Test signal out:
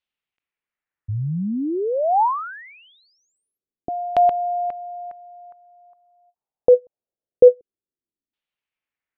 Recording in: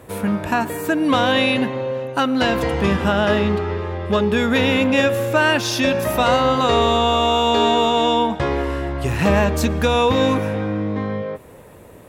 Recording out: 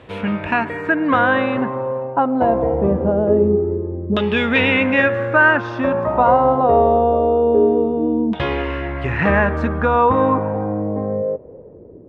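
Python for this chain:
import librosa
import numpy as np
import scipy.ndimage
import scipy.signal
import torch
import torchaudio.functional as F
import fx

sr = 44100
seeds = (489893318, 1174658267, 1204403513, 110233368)

y = fx.filter_lfo_lowpass(x, sr, shape='saw_down', hz=0.24, low_hz=280.0, high_hz=3200.0, q=2.6)
y = fx.end_taper(y, sr, db_per_s=560.0)
y = y * librosa.db_to_amplitude(-1.0)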